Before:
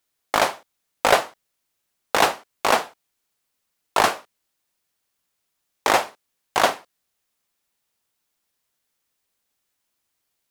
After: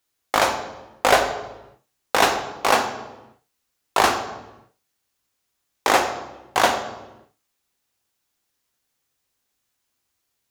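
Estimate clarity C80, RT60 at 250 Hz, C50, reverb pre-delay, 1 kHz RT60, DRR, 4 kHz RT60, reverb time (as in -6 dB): 10.0 dB, n/a, 8.0 dB, 3 ms, 0.95 s, 5.0 dB, 0.80 s, 1.1 s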